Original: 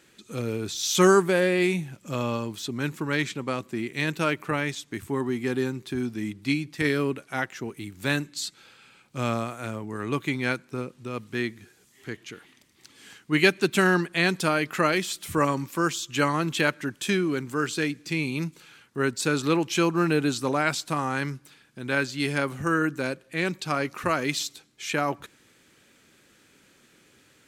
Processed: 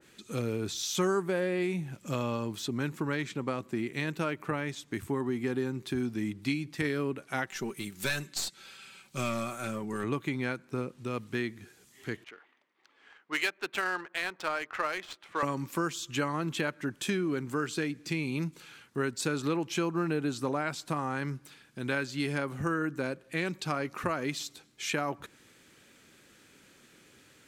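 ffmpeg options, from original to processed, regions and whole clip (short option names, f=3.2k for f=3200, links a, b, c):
-filter_complex "[0:a]asettb=1/sr,asplit=3[a][b][c];[a]atrim=end=7.474[d];[b]atrim=start=7.47:end=10.04,asetpts=PTS-STARTPTS,afade=t=in:d=0.004:c=qsin,afade=t=out:st=2.566:d=0.004:c=qsin,highshelf=f=2.2k:g=9,aecho=1:1:5.2:0.51,atrim=end_sample=113337,aeval=exprs='(tanh(7.08*val(0)+0.55)-tanh(0.55))/7.08':c=same[e];[c]atrim=start=10.036[f];[d][e]acrossfade=d=0.004:c1=hsin:c2=qsin[g];[g][f]acrossfade=d=0.004:c1=qsin:c2=hsin,asettb=1/sr,asplit=3[h][i][j];[h]atrim=end=12.244[k];[i]atrim=start=12.24:end=15.43,asetpts=PTS-STARTPTS,afade=t=in:d=0.004:c=qsin,afade=t=out:st=3.186:d=0.004:c=qsin,highpass=700,adynamicsmooth=sensitivity=4:basefreq=1.4k[l];[j]atrim=start=15.426[m];[k][l]acrossfade=d=0.004:c1=hsin:c2=qsin[n];[n][m]acrossfade=d=0.004:c1=qsin:c2=hsin,acompressor=threshold=-28dB:ratio=3,adynamicequalizer=threshold=0.00447:dfrequency=1900:dqfactor=0.7:tfrequency=1900:tqfactor=0.7:attack=5:release=100:ratio=0.375:range=3:mode=cutabove:tftype=highshelf"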